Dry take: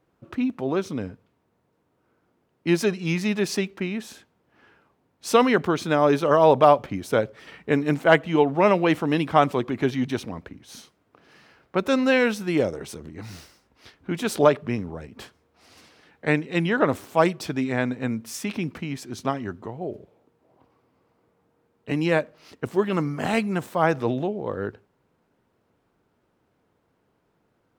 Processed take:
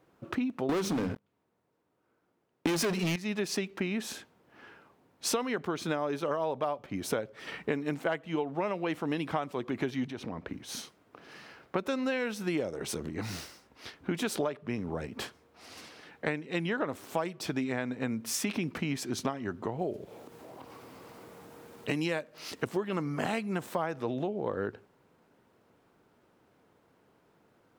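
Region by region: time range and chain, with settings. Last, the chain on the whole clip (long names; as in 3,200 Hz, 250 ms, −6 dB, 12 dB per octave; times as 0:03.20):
0:00.69–0:03.16: mains-hum notches 50/100/150/200/250 Hz + leveller curve on the samples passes 5
0:10.08–0:10.49: low-pass filter 2,800 Hz 6 dB per octave + downward compressor 3 to 1, threshold −37 dBFS
0:19.79–0:22.65: high-shelf EQ 3,500 Hz +9 dB + upward compression, threshold −40 dBFS
whole clip: low-shelf EQ 98 Hz −9 dB; downward compressor 12 to 1, threshold −32 dBFS; level +4 dB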